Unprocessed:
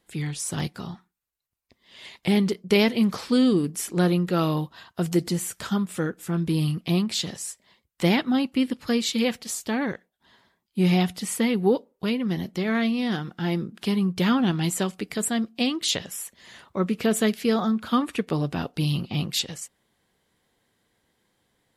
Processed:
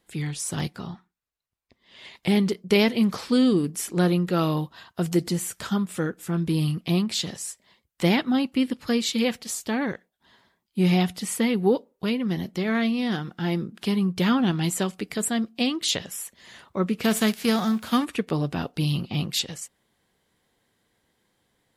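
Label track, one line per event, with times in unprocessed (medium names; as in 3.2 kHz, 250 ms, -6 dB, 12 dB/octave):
0.760000	2.150000	treble shelf 7.5 kHz -11 dB
17.030000	18.040000	formants flattened exponent 0.6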